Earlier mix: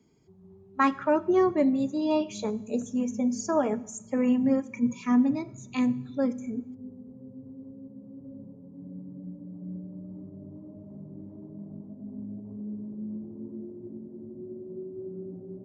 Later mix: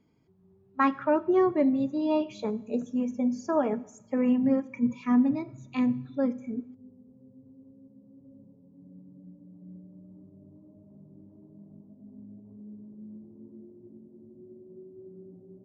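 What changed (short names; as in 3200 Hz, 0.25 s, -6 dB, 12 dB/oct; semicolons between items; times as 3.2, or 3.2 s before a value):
background -8.5 dB; master: add air absorption 180 m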